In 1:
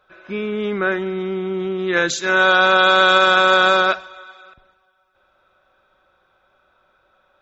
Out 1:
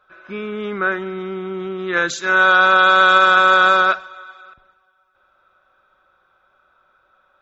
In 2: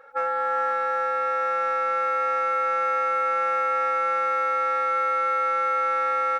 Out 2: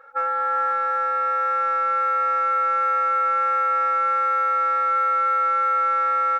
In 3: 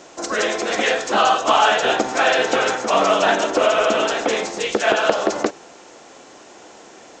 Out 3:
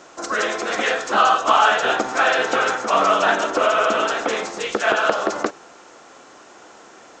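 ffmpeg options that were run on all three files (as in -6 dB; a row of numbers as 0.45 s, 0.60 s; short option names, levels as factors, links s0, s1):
-af "equalizer=f=1300:w=1.9:g=7.5,volume=0.668"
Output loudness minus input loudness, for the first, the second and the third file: +1.5 LU, +3.0 LU, -0.5 LU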